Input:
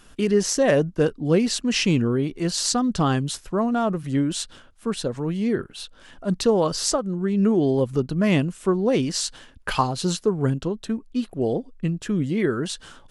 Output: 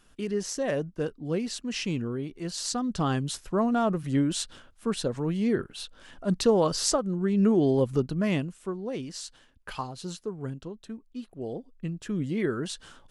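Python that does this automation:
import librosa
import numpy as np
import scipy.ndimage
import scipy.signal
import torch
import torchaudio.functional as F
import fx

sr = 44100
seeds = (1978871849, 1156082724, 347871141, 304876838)

y = fx.gain(x, sr, db=fx.line((2.43, -10.0), (3.57, -2.5), (7.97, -2.5), (8.77, -13.0), (11.32, -13.0), (12.3, -5.5)))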